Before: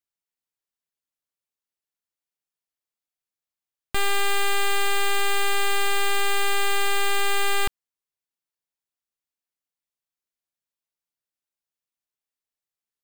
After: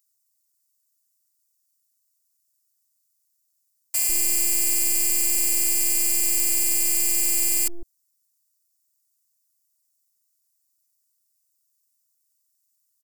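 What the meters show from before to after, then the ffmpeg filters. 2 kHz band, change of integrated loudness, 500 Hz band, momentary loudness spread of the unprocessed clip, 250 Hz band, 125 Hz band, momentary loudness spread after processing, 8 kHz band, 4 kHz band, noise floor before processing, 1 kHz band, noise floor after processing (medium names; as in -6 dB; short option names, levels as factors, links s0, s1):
-11.0 dB, +5.0 dB, -13.0 dB, 2 LU, +2.0 dB, no reading, 2 LU, +12.0 dB, -5.0 dB, under -85 dBFS, under -20 dB, -73 dBFS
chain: -filter_complex "[0:a]alimiter=level_in=1.26:limit=0.0631:level=0:latency=1:release=36,volume=0.794,acrossover=split=530[s0][s1];[s0]adelay=150[s2];[s2][s1]amix=inputs=2:normalize=0,aexciter=amount=10.6:drive=5.7:freq=4700,afftfilt=real='hypot(re,im)*cos(PI*b)':imag='0':win_size=512:overlap=0.75"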